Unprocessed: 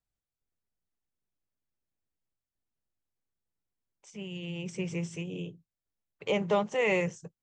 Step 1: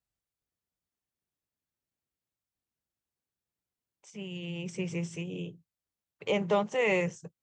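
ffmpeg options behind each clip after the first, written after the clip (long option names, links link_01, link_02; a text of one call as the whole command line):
ffmpeg -i in.wav -af "highpass=47" out.wav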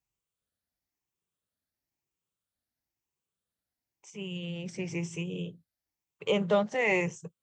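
ffmpeg -i in.wav -af "afftfilt=real='re*pow(10,7/40*sin(2*PI*(0.72*log(max(b,1)*sr/1024/100)/log(2)-(1)*(pts-256)/sr)))':imag='im*pow(10,7/40*sin(2*PI*(0.72*log(max(b,1)*sr/1024/100)/log(2)-(1)*(pts-256)/sr)))':win_size=1024:overlap=0.75" out.wav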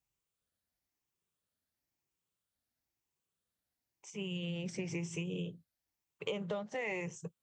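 ffmpeg -i in.wav -af "acompressor=threshold=-34dB:ratio=16" out.wav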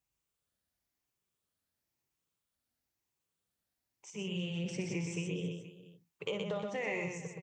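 ffmpeg -i in.wav -af "aecho=1:1:57|123|322|473:0.282|0.596|0.158|0.133" out.wav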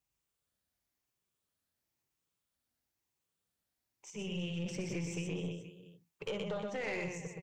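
ffmpeg -i in.wav -af "aeval=exprs='(tanh(35.5*val(0)+0.35)-tanh(0.35))/35.5':channel_layout=same,volume=1dB" out.wav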